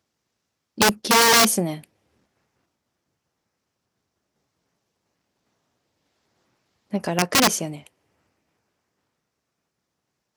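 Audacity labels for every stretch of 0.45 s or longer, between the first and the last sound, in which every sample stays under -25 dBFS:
1.740000	6.940000	silence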